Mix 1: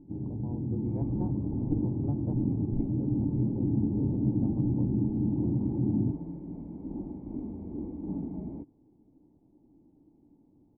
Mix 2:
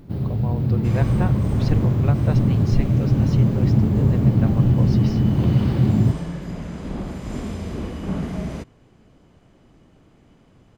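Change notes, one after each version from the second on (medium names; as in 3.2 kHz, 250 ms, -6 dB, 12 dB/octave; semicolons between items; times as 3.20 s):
master: remove cascade formant filter u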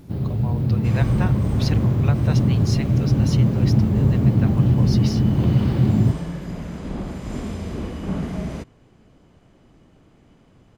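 speech: add tilt EQ +4 dB/octave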